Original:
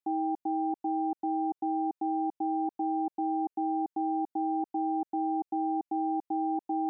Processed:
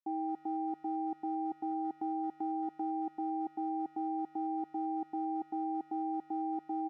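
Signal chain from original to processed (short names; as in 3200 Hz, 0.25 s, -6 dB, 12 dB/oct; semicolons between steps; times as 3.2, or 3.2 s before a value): Wiener smoothing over 9 samples; 1.71–2.92 transient shaper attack +1 dB, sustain -6 dB; speakerphone echo 0.22 s, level -19 dB; gain -5.5 dB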